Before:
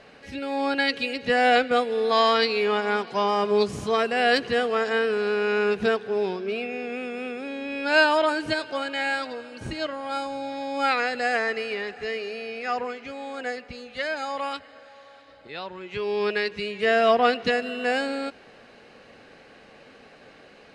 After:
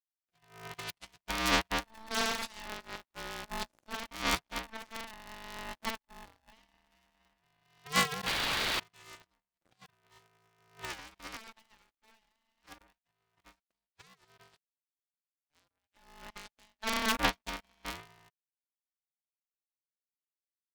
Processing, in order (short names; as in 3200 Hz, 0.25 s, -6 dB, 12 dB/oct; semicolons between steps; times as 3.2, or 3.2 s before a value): power-law curve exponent 3; painted sound noise, 8.26–8.8, 370–4400 Hz -32 dBFS; polarity switched at an audio rate 440 Hz